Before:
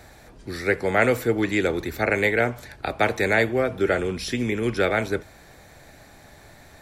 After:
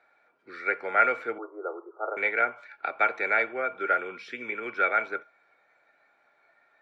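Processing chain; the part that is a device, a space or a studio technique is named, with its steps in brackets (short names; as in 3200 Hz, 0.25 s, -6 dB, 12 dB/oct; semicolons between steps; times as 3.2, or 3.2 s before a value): 1.38–2.17 Chebyshev band-pass 330–1300 Hz, order 5; spectral noise reduction 10 dB; tin-can telephone (BPF 550–2200 Hz; small resonant body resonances 1400/2300 Hz, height 16 dB, ringing for 45 ms); gain -5.5 dB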